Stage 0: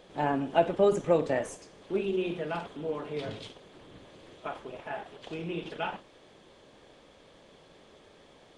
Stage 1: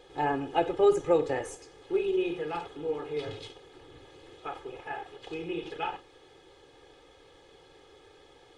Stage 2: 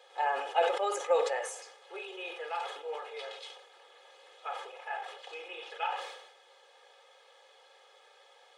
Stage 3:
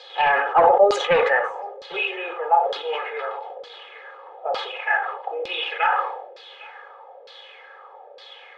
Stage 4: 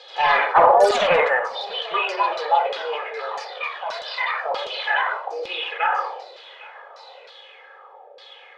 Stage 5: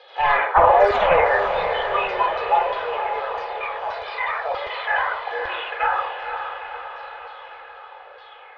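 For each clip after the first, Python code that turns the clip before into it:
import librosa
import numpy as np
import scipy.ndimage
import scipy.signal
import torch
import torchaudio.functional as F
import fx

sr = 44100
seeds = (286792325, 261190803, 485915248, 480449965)

y1 = x + 0.9 * np.pad(x, (int(2.4 * sr / 1000.0), 0))[:len(x)]
y1 = y1 * 10.0 ** (-2.5 / 20.0)
y2 = scipy.signal.sosfilt(scipy.signal.ellip(4, 1.0, 70, 540.0, 'highpass', fs=sr, output='sos'), y1)
y2 = fx.sustainer(y2, sr, db_per_s=62.0)
y3 = fx.fold_sine(y2, sr, drive_db=7, ceiling_db=-14.0)
y3 = y3 + 10.0 ** (-23.0 / 20.0) * np.pad(y3, (int(805 * sr / 1000.0), 0))[:len(y3)]
y3 = fx.filter_lfo_lowpass(y3, sr, shape='saw_down', hz=1.1, low_hz=530.0, high_hz=4700.0, q=4.1)
y4 = fx.echo_pitch(y3, sr, ms=81, semitones=3, count=2, db_per_echo=-3.0)
y4 = y4 * 10.0 ** (-1.0 / 20.0)
y5 = scipy.signal.sosfilt(scipy.signal.butter(2, 2400.0, 'lowpass', fs=sr, output='sos'), y4)
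y5 = fx.low_shelf_res(y5, sr, hz=120.0, db=13.5, q=1.5)
y5 = fx.echo_diffused(y5, sr, ms=486, feedback_pct=59, wet_db=-7.0)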